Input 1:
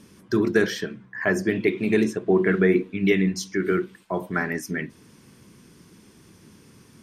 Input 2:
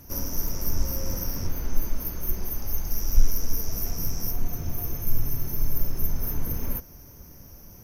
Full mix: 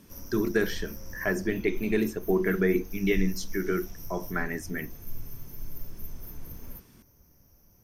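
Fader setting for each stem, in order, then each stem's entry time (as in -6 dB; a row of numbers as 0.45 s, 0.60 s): -5.5 dB, -13.5 dB; 0.00 s, 0.00 s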